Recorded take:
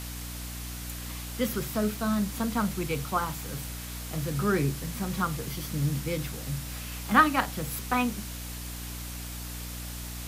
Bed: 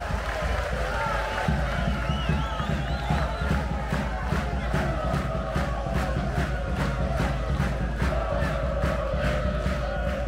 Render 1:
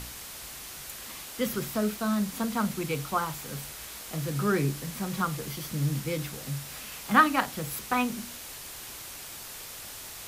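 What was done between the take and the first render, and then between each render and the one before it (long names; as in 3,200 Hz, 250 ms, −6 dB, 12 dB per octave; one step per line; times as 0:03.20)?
hum removal 60 Hz, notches 5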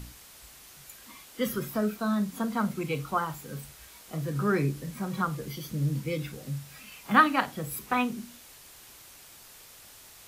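noise reduction from a noise print 9 dB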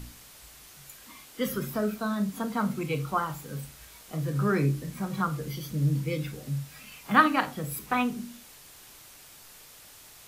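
rectangular room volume 260 cubic metres, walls furnished, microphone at 0.43 metres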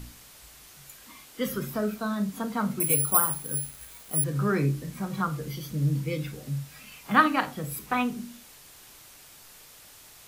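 0:02.80–0:04.24: bad sample-rate conversion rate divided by 4×, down filtered, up zero stuff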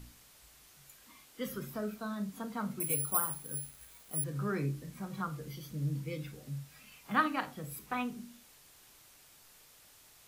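level −9 dB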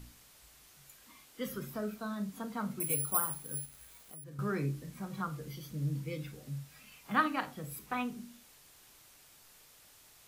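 0:03.65–0:04.39: downward compressor 4 to 1, threshold −46 dBFS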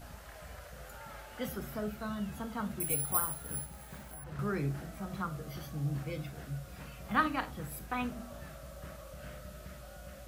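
mix in bed −21.5 dB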